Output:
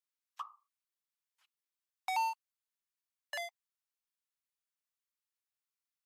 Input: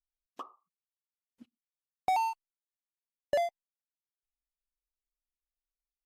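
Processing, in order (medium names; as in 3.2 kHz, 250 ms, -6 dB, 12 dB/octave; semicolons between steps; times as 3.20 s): steep high-pass 910 Hz 36 dB/octave; trim +1 dB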